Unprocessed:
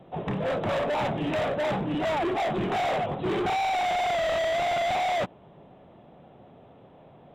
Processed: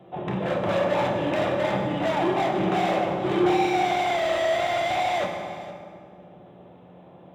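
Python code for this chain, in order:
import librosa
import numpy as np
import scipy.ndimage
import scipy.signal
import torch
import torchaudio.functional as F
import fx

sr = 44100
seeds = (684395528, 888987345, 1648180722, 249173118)

y = fx.highpass(x, sr, hz=130.0, slope=6)
y = y + 10.0 ** (-16.0 / 20.0) * np.pad(y, (int(463 * sr / 1000.0), 0))[:len(y)]
y = fx.rev_fdn(y, sr, rt60_s=2.2, lf_ratio=1.4, hf_ratio=0.6, size_ms=17.0, drr_db=0.5)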